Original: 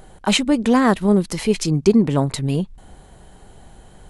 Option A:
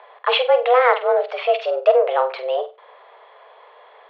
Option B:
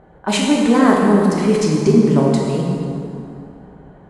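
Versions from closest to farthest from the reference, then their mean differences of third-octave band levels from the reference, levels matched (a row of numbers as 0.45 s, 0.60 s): B, A; 7.5 dB, 12.5 dB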